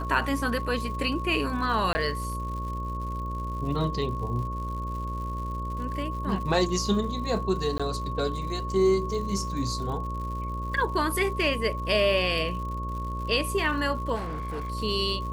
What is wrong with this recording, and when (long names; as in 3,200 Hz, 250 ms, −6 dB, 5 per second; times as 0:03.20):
mains buzz 60 Hz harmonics 10 −33 dBFS
surface crackle 140 per second −37 dBFS
whistle 1,100 Hz −34 dBFS
0:01.93–0:01.95: drop-out 20 ms
0:07.78–0:07.80: drop-out 16 ms
0:14.15–0:14.70: clipping −29 dBFS